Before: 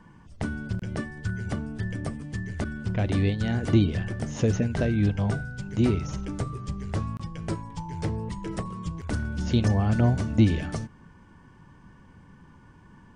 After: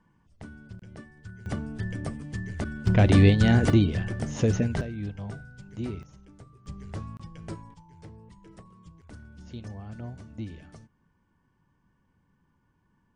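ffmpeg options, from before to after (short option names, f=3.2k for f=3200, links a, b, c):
-af "asetnsamples=n=441:p=0,asendcmd='1.46 volume volume -1.5dB;2.87 volume volume 7dB;3.7 volume volume 0dB;4.81 volume volume -11dB;6.03 volume volume -19.5dB;6.66 volume volume -7.5dB;7.74 volume volume -17.5dB',volume=-13.5dB"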